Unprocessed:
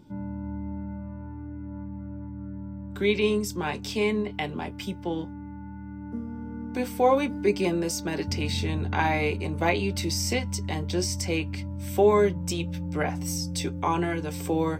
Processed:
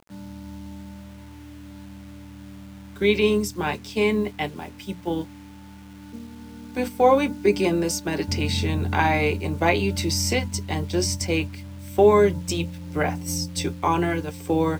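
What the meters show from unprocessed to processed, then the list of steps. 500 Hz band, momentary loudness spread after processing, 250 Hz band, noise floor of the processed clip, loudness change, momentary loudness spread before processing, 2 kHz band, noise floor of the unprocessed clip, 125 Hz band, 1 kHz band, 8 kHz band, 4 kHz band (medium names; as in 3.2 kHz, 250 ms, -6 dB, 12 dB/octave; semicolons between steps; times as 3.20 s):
+4.0 dB, 23 LU, +3.0 dB, -43 dBFS, +4.5 dB, 15 LU, +4.0 dB, -39 dBFS, +2.5 dB, +4.0 dB, +3.5 dB, +3.5 dB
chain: gate -30 dBFS, range -8 dB; hum notches 60/120/180/240 Hz; bit crusher 9-bit; trim +4 dB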